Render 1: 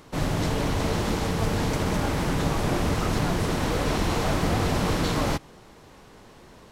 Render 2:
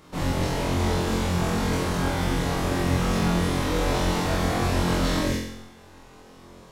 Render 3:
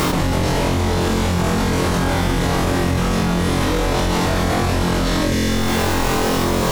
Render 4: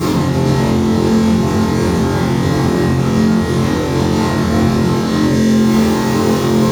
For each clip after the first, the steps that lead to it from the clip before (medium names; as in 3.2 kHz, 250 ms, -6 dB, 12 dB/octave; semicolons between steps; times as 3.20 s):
feedback comb 270 Hz, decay 1 s, mix 70%; spectral selection erased 5.19–5.48 s, 610–1500 Hz; flutter echo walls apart 3.9 m, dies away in 0.77 s; trim +6 dB
peak limiter -18 dBFS, peak gain reduction 7 dB; bit crusher 10-bit; level flattener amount 100%; trim +6.5 dB
in parallel at -10.5 dB: sample-and-hold 13×; on the sum: reverberation RT60 0.60 s, pre-delay 3 ms, DRR -13 dB; trim -13.5 dB